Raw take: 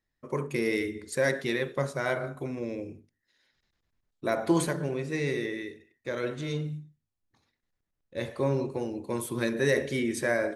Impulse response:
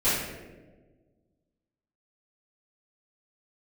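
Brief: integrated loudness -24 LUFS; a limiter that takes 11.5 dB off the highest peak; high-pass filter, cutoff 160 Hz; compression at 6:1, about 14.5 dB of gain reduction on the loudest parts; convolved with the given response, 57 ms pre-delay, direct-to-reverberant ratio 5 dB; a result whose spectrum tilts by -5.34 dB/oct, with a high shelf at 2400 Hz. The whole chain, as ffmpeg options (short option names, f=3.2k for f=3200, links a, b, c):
-filter_complex "[0:a]highpass=160,highshelf=f=2.4k:g=-7,acompressor=threshold=-36dB:ratio=6,alimiter=level_in=9.5dB:limit=-24dB:level=0:latency=1,volume=-9.5dB,asplit=2[a][b];[1:a]atrim=start_sample=2205,adelay=57[c];[b][c]afir=irnorm=-1:irlink=0,volume=-19dB[d];[a][d]amix=inputs=2:normalize=0,volume=18dB"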